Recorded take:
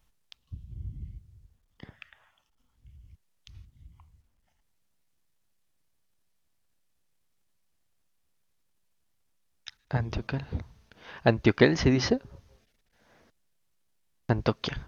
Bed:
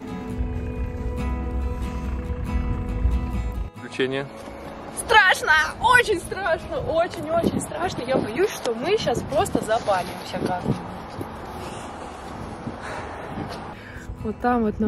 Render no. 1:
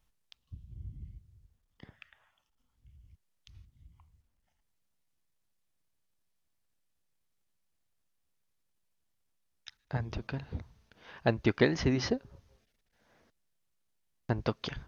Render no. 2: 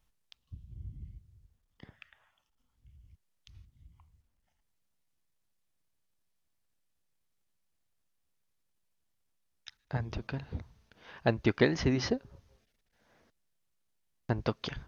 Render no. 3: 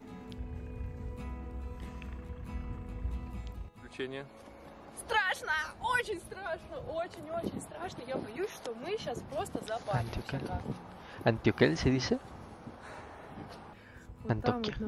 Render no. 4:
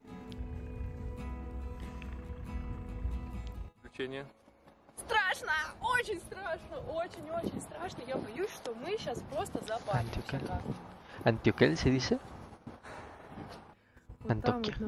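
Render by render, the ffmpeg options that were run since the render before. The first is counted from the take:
-af "volume=0.531"
-af anull
-filter_complex "[1:a]volume=0.178[s0];[0:a][s0]amix=inputs=2:normalize=0"
-af "agate=range=0.251:threshold=0.00398:ratio=16:detection=peak"

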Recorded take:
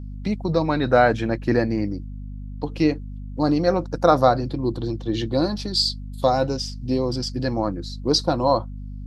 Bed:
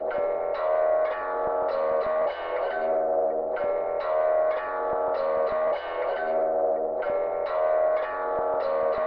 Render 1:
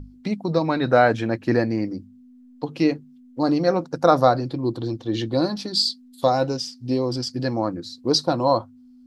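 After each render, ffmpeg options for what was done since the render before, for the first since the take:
-af "bandreject=f=50:t=h:w=6,bandreject=f=100:t=h:w=6,bandreject=f=150:t=h:w=6,bandreject=f=200:t=h:w=6"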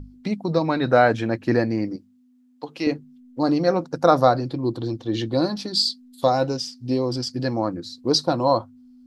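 -filter_complex "[0:a]asettb=1/sr,asplit=3[s0][s1][s2];[s0]atrim=end=1.964[s3];[s1]atrim=start=1.96:end=2.87,asetpts=PTS-STARTPTS,afade=t=in:d=0.004:c=qsin,afade=t=out:st=0.906:d=0.004:c=qsin,highpass=f=640:p=1[s4];[s2]atrim=start=2.866[s5];[s3][s4]acrossfade=d=0.004:c1=hsin:c2=qsin[s6];[s6][s5]acrossfade=d=0.004:c1=qsin:c2=hsin"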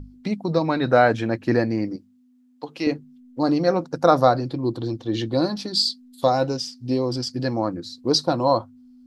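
-af anull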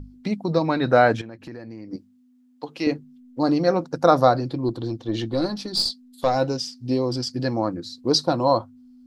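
-filter_complex "[0:a]asettb=1/sr,asplit=3[s0][s1][s2];[s0]atrim=end=1.214[s3];[s1]atrim=start=1.21:end=1.93,asetpts=PTS-STARTPTS,afade=t=in:d=0.004:c=qsin,afade=t=out:st=0.716:d=0.004:c=qsin,acompressor=threshold=0.0158:ratio=5:attack=3.2:release=140:knee=1:detection=peak[s4];[s2]atrim=start=1.926[s5];[s3][s4]acrossfade=d=0.004:c1=hsin:c2=qsin[s6];[s6][s5]acrossfade=d=0.004:c1=qsin:c2=hsin,asettb=1/sr,asplit=3[s7][s8][s9];[s7]atrim=end=4.684[s10];[s8]atrim=start=4.68:end=6.36,asetpts=PTS-STARTPTS,afade=t=in:d=0.004:c=qsin,afade=t=out:st=1.676:d=0.004:c=qsin,aeval=exprs='(tanh(3.55*val(0)+0.4)-tanh(0.4))/3.55':c=same[s11];[s9]atrim=start=6.356[s12];[s10][s11]acrossfade=d=0.004:c1=hsin:c2=qsin[s13];[s13][s12]acrossfade=d=0.004:c1=qsin:c2=hsin"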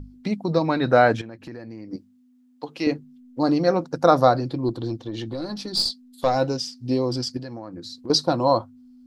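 -filter_complex "[0:a]asettb=1/sr,asplit=3[s0][s1][s2];[s0]atrim=end=5.034[s3];[s1]atrim=start=5.03:end=5.67,asetpts=PTS-STARTPTS,afade=t=in:d=0.004:c=qsin,afade=t=out:st=0.636:d=0.004:c=qsin,acompressor=threshold=0.0501:ratio=6:attack=3.2:release=140:knee=1:detection=peak[s4];[s2]atrim=start=5.666[s5];[s3][s4]acrossfade=d=0.004:c1=hsin:c2=qsin[s6];[s6][s5]acrossfade=d=0.004:c1=qsin:c2=hsin,asettb=1/sr,asplit=3[s7][s8][s9];[s7]atrim=end=7.374[s10];[s8]atrim=start=7.37:end=8.1,asetpts=PTS-STARTPTS,afade=t=in:d=0.004:c=qsin,afade=t=out:st=0.726:d=0.004:c=qsin,acompressor=threshold=0.0251:ratio=6:attack=3.2:release=140:knee=1:detection=peak[s11];[s9]atrim=start=8.096[s12];[s10][s11]acrossfade=d=0.004:c1=hsin:c2=qsin[s13];[s13][s12]acrossfade=d=0.004:c1=qsin:c2=hsin"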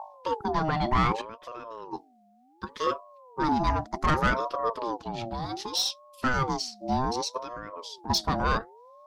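-af "asoftclip=type=tanh:threshold=0.178,aeval=exprs='val(0)*sin(2*PI*650*n/s+650*0.3/0.66*sin(2*PI*0.66*n/s))':c=same"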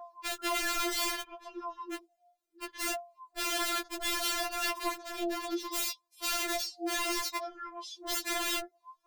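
-af "aeval=exprs='(mod(15.8*val(0)+1,2)-1)/15.8':c=same,afftfilt=real='re*4*eq(mod(b,16),0)':imag='im*4*eq(mod(b,16),0)':win_size=2048:overlap=0.75"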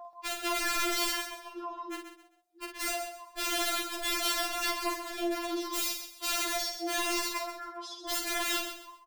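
-filter_complex "[0:a]asplit=2[s0][s1];[s1]adelay=49,volume=0.501[s2];[s0][s2]amix=inputs=2:normalize=0,aecho=1:1:131|262|393:0.355|0.103|0.0298"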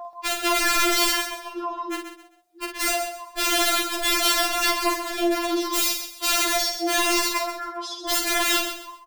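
-af "volume=2.99"

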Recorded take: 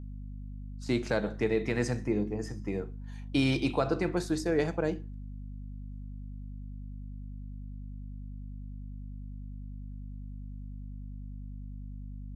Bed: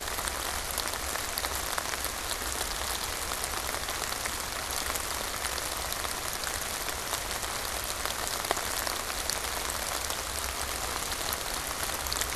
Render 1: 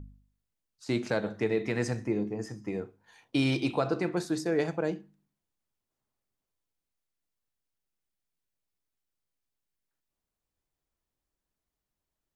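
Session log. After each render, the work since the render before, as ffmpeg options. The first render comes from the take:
-af "bandreject=f=50:t=h:w=4,bandreject=f=100:t=h:w=4,bandreject=f=150:t=h:w=4,bandreject=f=200:t=h:w=4,bandreject=f=250:t=h:w=4"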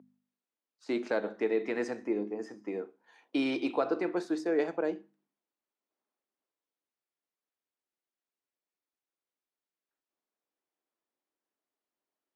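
-af "highpass=f=260:w=0.5412,highpass=f=260:w=1.3066,aemphasis=mode=reproduction:type=75kf"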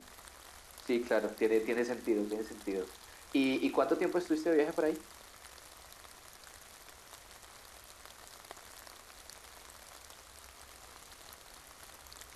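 -filter_complex "[1:a]volume=0.0944[s0];[0:a][s0]amix=inputs=2:normalize=0"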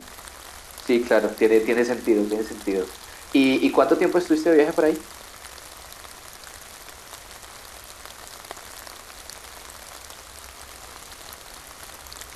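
-af "volume=3.98"

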